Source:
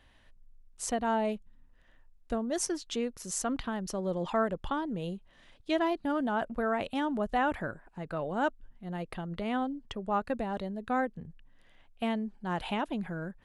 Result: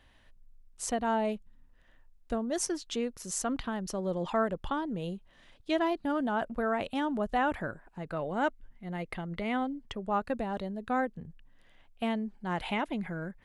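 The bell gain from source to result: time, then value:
bell 2100 Hz 0.21 oct
8.01 s 0 dB
8.44 s +10 dB
9.68 s +10 dB
10.14 s 0 dB
12.06 s 0 dB
12.79 s +10.5 dB

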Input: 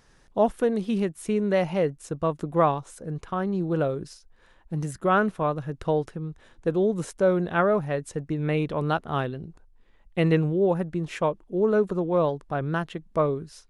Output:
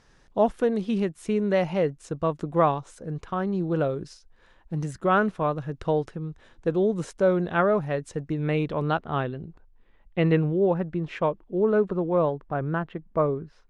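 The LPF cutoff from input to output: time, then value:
8.52 s 7300 Hz
9.14 s 3400 Hz
11.65 s 3400 Hz
12.67 s 1900 Hz

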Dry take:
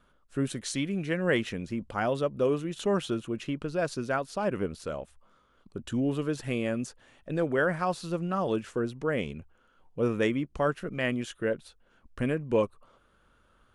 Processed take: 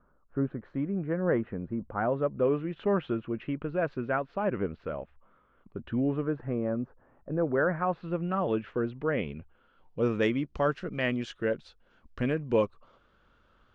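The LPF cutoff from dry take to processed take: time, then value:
LPF 24 dB/oct
1.83 s 1400 Hz
2.57 s 2400 Hz
5.99 s 2400 Hz
6.59 s 1300 Hz
7.31 s 1300 Hz
8.32 s 2900 Hz
9.26 s 2900 Hz
10.04 s 5500 Hz

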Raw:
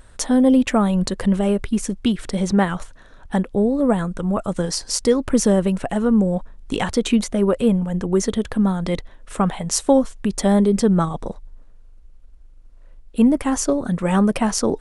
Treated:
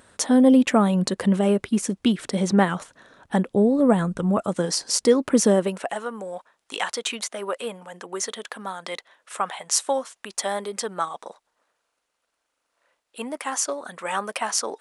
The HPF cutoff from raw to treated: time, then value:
3.35 s 170 Hz
4.19 s 70 Hz
4.52 s 200 Hz
5.48 s 200 Hz
6.04 s 820 Hz

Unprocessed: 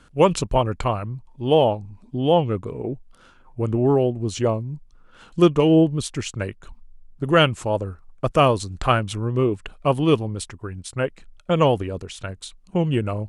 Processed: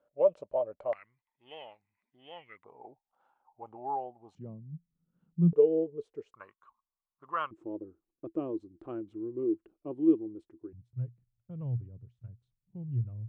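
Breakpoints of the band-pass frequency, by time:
band-pass, Q 12
590 Hz
from 0.93 s 2000 Hz
from 2.64 s 820 Hz
from 4.35 s 170 Hz
from 5.53 s 440 Hz
from 6.34 s 1100 Hz
from 7.51 s 330 Hz
from 10.73 s 120 Hz

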